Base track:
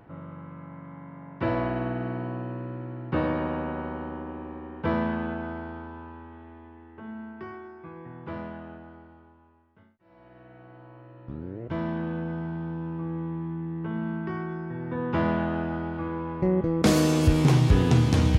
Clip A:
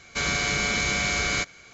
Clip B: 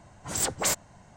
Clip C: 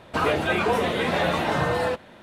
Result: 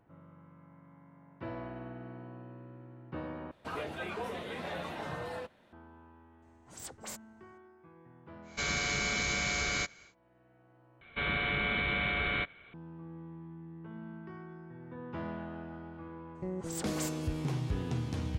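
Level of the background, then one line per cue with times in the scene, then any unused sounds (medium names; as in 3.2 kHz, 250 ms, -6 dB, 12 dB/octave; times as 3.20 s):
base track -14.5 dB
3.51 s: replace with C -16 dB
6.42 s: add B -18 dB
8.42 s: add A -7 dB, fades 0.10 s
11.01 s: replace with A -5.5 dB + resampled via 8 kHz
16.35 s: add B -14 dB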